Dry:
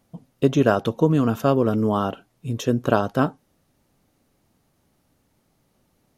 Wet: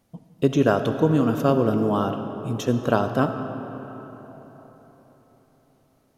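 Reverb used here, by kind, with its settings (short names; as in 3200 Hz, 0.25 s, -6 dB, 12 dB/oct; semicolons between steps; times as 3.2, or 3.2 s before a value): digital reverb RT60 4.3 s, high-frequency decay 0.55×, pre-delay 25 ms, DRR 7.5 dB; gain -1.5 dB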